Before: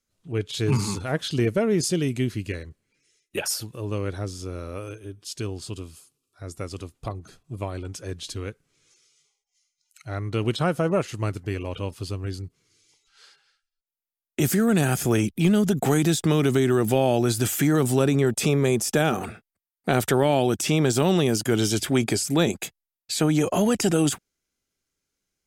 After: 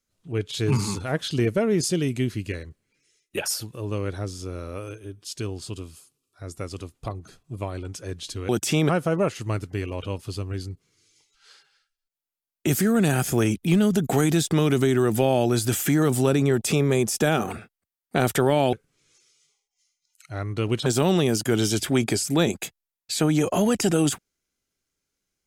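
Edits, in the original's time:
8.49–10.62 s: swap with 20.46–20.86 s

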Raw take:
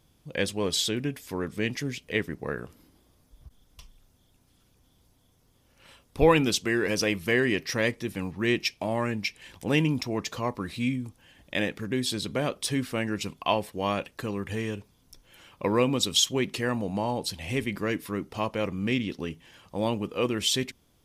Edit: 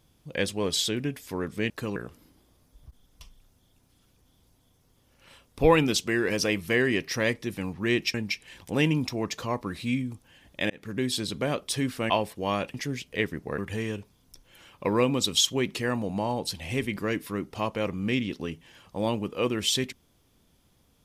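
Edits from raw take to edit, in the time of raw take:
1.70–2.54 s: swap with 14.11–14.37 s
8.72–9.08 s: delete
11.64–11.89 s: fade in
13.04–13.47 s: delete

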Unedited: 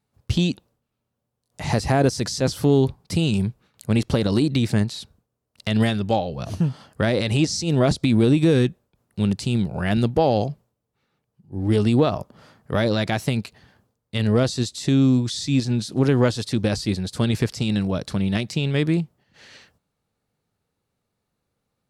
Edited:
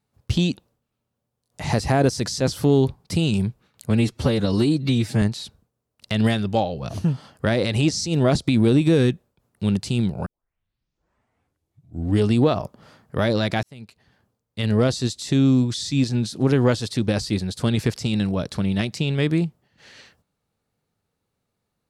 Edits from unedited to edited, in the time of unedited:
3.90–4.78 s: stretch 1.5×
9.82 s: tape start 1.99 s
13.19–14.29 s: fade in

